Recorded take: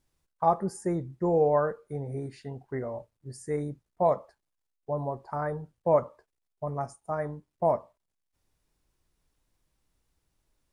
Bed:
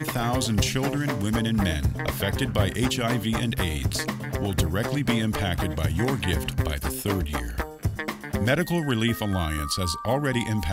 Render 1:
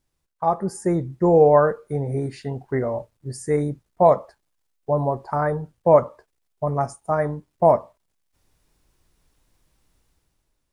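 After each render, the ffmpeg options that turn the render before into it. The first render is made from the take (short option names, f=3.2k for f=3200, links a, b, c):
-af "dynaudnorm=f=100:g=13:m=10dB"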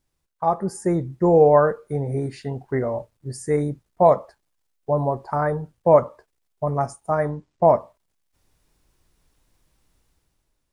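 -filter_complex "[0:a]asettb=1/sr,asplit=3[a][b][c];[a]atrim=end=7.304[d];[b]atrim=start=7.3:end=7.74,asetpts=PTS-STARTPTS,afade=t=in:d=0.004:c=qsin,afade=t=out:st=0.436:d=0.004:c=qsin,lowpass=f=7.5k:w=0.5412,lowpass=f=7.5k:w=1.3066[e];[c]atrim=start=7.736[f];[d][e]acrossfade=d=0.004:c1=hsin:c2=qsin[g];[g][f]acrossfade=d=0.004:c1=qsin:c2=hsin"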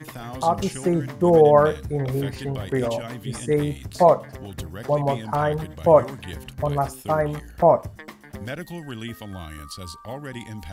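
-filter_complex "[1:a]volume=-10dB[a];[0:a][a]amix=inputs=2:normalize=0"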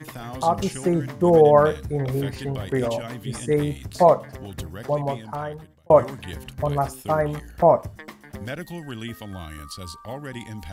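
-filter_complex "[0:a]asplit=2[a][b];[a]atrim=end=5.9,asetpts=PTS-STARTPTS,afade=t=out:st=4.67:d=1.23[c];[b]atrim=start=5.9,asetpts=PTS-STARTPTS,afade=t=in:d=0.004:c=hsin[d];[c][d]concat=n=2:v=0:a=1"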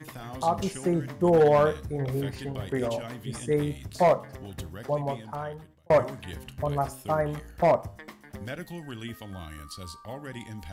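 -af "flanger=delay=9.9:depth=2.3:regen=-85:speed=0.48:shape=triangular,asoftclip=type=hard:threshold=-14.5dB"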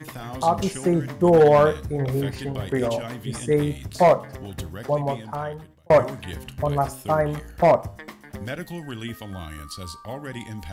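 -af "volume=5dB"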